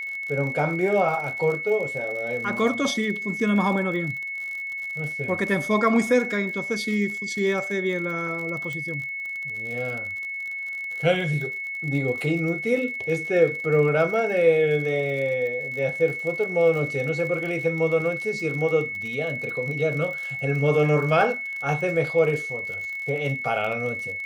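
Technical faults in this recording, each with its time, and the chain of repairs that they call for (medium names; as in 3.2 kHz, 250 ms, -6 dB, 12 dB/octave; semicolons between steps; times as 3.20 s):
crackle 51 per s -32 dBFS
whine 2.2 kHz -29 dBFS
8.73 s: pop -20 dBFS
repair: de-click; band-stop 2.2 kHz, Q 30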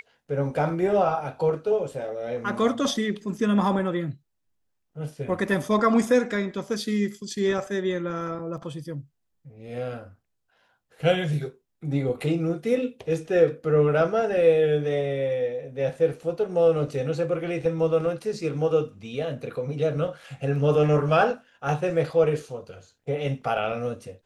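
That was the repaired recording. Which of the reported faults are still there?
nothing left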